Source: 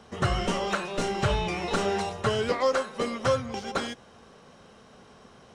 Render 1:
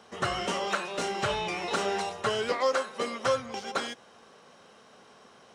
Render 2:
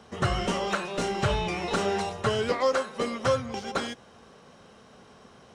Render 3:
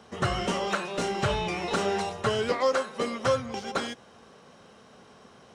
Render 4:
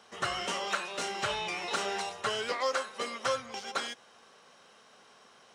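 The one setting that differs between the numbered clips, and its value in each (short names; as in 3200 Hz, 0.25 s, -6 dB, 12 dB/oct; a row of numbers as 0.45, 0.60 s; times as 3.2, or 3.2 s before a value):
HPF, cutoff: 430, 41, 110, 1200 Hz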